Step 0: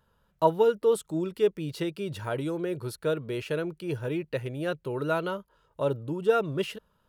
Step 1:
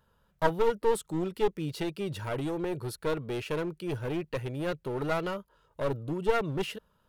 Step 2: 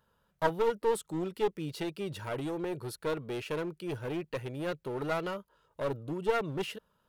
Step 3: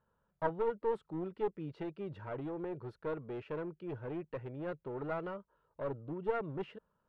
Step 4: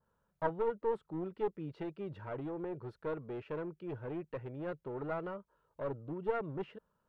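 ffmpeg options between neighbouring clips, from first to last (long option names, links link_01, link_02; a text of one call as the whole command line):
ffmpeg -i in.wav -af "aeval=exprs='clip(val(0),-1,0.0266)':channel_layout=same" out.wav
ffmpeg -i in.wav -af "lowshelf=frequency=96:gain=-8,volume=-2dB" out.wav
ffmpeg -i in.wav -af "lowpass=1600,volume=-5dB" out.wav
ffmpeg -i in.wav -af "adynamicequalizer=threshold=0.00251:dfrequency=2000:dqfactor=0.7:tfrequency=2000:tqfactor=0.7:attack=5:release=100:ratio=0.375:range=2.5:mode=cutabove:tftype=highshelf" out.wav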